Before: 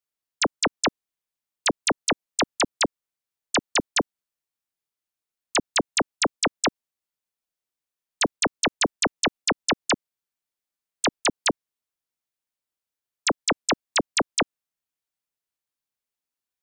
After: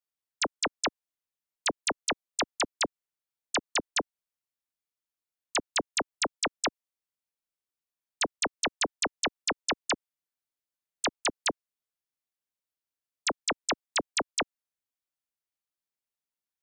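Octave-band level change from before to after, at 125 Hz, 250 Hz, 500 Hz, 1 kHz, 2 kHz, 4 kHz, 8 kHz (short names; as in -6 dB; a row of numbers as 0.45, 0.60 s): -11.5, -9.5, -7.0, -5.5, -5.5, -5.5, -5.5 dB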